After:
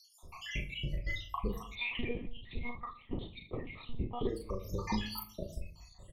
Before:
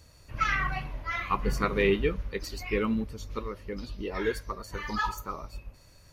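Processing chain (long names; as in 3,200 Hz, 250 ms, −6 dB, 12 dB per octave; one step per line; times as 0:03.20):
time-frequency cells dropped at random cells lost 78%
downward compressor 10 to 1, threshold −38 dBFS, peak gain reduction 15 dB
rotating-speaker cabinet horn 5 Hz, later 0.75 Hz, at 0:02.54
ambience of single reflections 12 ms −16 dB, 37 ms −3.5 dB
convolution reverb RT60 0.55 s, pre-delay 5 ms, DRR 7 dB
0:01.75–0:04.29: one-pitch LPC vocoder at 8 kHz 240 Hz
Butterworth band-reject 1,500 Hz, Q 2.2
level +7.5 dB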